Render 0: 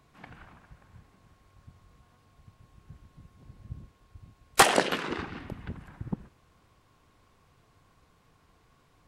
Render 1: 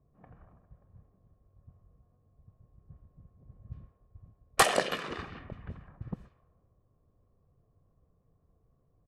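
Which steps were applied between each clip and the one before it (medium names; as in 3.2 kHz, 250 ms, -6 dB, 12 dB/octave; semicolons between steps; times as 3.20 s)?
level-controlled noise filter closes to 420 Hz, open at -30.5 dBFS; comb 1.7 ms, depth 39%; trim -4.5 dB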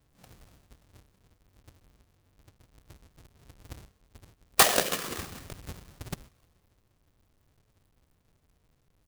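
square wave that keeps the level; treble shelf 3.3 kHz +10.5 dB; trim -4.5 dB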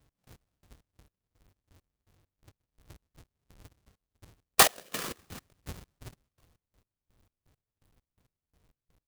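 trance gate "x..x...x" 167 bpm -24 dB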